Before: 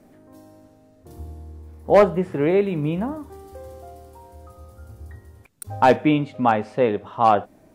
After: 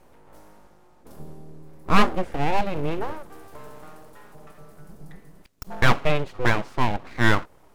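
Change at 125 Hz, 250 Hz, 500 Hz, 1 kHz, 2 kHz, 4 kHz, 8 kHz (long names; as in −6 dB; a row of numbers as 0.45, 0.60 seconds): +0.5 dB, −5.0 dB, −9.5 dB, −5.0 dB, +5.5 dB, +6.0 dB, can't be measured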